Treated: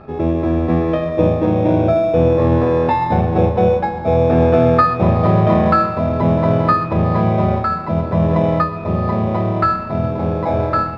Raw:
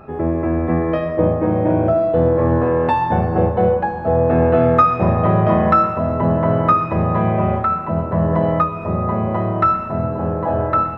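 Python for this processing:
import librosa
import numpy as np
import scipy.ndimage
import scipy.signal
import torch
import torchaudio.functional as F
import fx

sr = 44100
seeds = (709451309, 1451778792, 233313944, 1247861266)

p1 = fx.peak_eq(x, sr, hz=3200.0, db=8.0, octaves=0.37)
p2 = fx.sample_hold(p1, sr, seeds[0], rate_hz=3000.0, jitter_pct=0)
p3 = p1 + (p2 * 10.0 ** (-9.5 / 20.0))
y = fx.air_absorb(p3, sr, metres=270.0)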